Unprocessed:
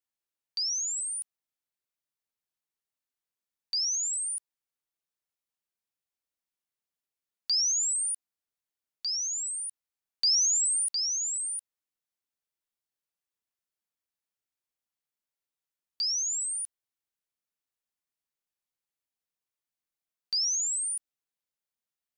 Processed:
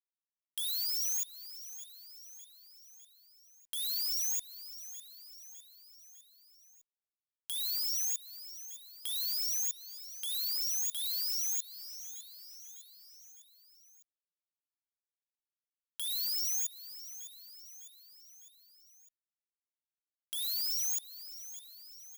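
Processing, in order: on a send at -16 dB: treble shelf 2.1 kHz -8 dB + reverberation RT60 1.4 s, pre-delay 36 ms; on the sum: peak limiter -30 dBFS, peak gain reduction 10.5 dB; pitch shift -6 st; high-pass 350 Hz 24 dB/octave; Schmitt trigger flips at -47.5 dBFS; feedback delay 605 ms, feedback 55%, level -19.5 dB; compression 2.5:1, threshold -50 dBFS, peak gain reduction 7.5 dB; tilt EQ +4.5 dB/octave

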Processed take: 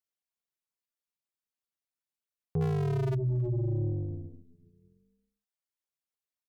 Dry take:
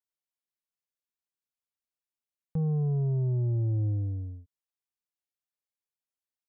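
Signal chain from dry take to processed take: 2.61–3.15 s: power-law waveshaper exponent 0.5; on a send: frequency-shifting echo 332 ms, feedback 43%, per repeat -98 Hz, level -21.5 dB; on the sum: AM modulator 250 Hz, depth 75%; reverb removal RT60 0.62 s; trim +3.5 dB

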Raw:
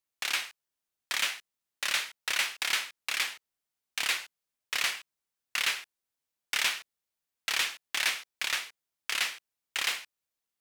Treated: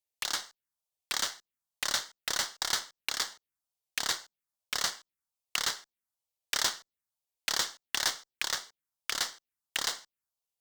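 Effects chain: touch-sensitive phaser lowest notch 230 Hz, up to 2.5 kHz, full sweep at -32.5 dBFS; Chebyshev shaper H 7 -21 dB, 8 -39 dB, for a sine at -17 dBFS; trim +6.5 dB

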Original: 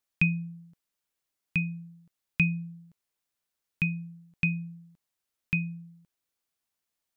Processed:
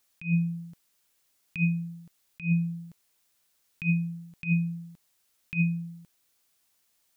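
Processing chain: treble shelf 2.8 kHz +5.5 dB; compressor with a negative ratio -30 dBFS, ratio -0.5; trim +5.5 dB

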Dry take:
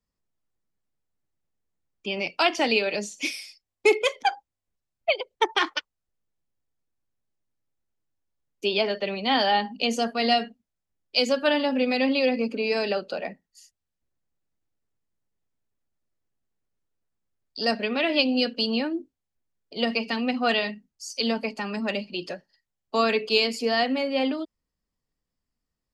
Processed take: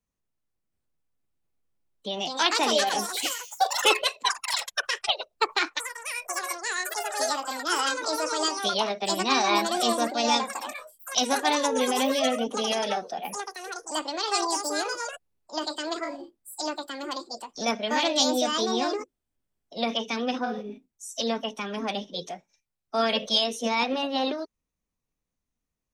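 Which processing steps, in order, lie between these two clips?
spectral replace 20.47–20.72 s, 440–9100 Hz both; ever faster or slower copies 721 ms, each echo +5 st, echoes 3; formant shift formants +4 st; trim -2 dB

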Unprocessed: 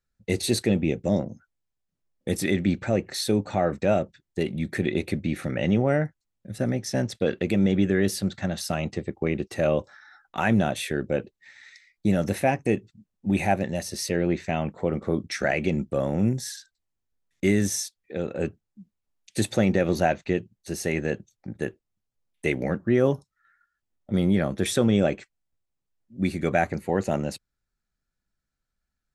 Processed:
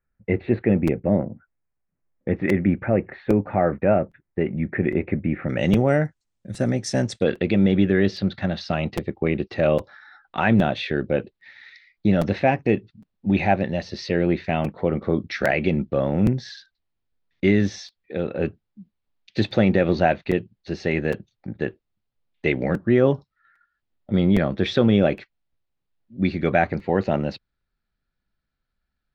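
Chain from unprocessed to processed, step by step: steep low-pass 2.3 kHz 36 dB/octave, from 5.48 s 9.4 kHz, from 7.23 s 4.6 kHz; crackling interface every 0.81 s, samples 256, repeat, from 0.87 s; trim +3.5 dB

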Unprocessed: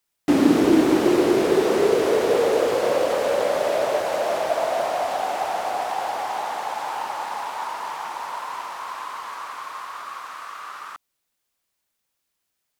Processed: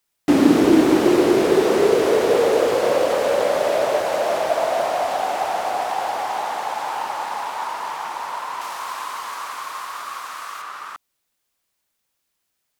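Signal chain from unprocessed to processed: 8.61–10.62 s: treble shelf 4.2 kHz +8 dB; trim +2.5 dB

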